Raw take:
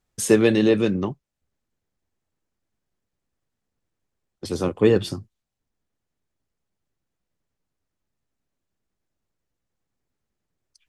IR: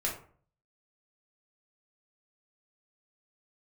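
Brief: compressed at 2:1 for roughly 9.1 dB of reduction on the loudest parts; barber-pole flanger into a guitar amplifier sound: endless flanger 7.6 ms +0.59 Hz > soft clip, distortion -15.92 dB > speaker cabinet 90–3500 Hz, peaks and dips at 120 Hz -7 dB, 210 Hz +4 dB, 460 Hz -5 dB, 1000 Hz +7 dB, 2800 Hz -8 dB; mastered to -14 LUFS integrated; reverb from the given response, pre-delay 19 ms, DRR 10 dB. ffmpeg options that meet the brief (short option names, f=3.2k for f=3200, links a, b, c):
-filter_complex "[0:a]acompressor=threshold=-28dB:ratio=2,asplit=2[a][b];[1:a]atrim=start_sample=2205,adelay=19[c];[b][c]afir=irnorm=-1:irlink=0,volume=-15dB[d];[a][d]amix=inputs=2:normalize=0,asplit=2[e][f];[f]adelay=7.6,afreqshift=0.59[g];[e][g]amix=inputs=2:normalize=1,asoftclip=threshold=-21.5dB,highpass=90,equalizer=f=120:t=q:w=4:g=-7,equalizer=f=210:t=q:w=4:g=4,equalizer=f=460:t=q:w=4:g=-5,equalizer=f=1k:t=q:w=4:g=7,equalizer=f=2.8k:t=q:w=4:g=-8,lowpass=f=3.5k:w=0.5412,lowpass=f=3.5k:w=1.3066,volume=19dB"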